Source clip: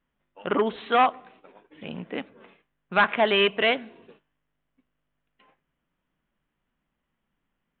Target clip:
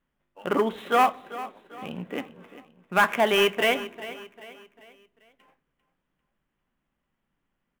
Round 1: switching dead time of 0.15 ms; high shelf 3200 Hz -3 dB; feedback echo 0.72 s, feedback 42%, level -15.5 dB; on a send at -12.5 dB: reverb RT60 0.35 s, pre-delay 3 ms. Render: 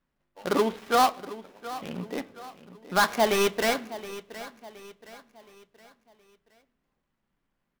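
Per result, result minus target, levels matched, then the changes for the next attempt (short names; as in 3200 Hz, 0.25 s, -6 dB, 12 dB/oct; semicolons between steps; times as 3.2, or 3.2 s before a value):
echo 0.324 s late; switching dead time: distortion +14 dB
change: feedback echo 0.396 s, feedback 42%, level -15.5 dB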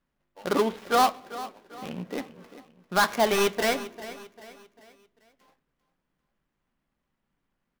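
switching dead time: distortion +14 dB
change: switching dead time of 0.038 ms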